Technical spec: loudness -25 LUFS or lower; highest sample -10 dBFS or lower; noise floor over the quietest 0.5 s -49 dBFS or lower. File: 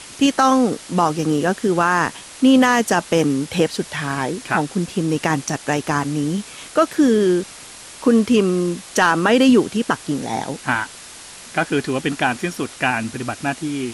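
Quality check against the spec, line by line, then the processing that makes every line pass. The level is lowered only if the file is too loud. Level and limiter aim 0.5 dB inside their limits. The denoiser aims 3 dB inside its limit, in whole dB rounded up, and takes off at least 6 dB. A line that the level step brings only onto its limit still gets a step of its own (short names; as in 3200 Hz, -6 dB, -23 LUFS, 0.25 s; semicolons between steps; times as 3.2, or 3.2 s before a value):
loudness -19.0 LUFS: fail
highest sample -4.5 dBFS: fail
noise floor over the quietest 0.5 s -39 dBFS: fail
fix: denoiser 7 dB, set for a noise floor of -39 dBFS; gain -6.5 dB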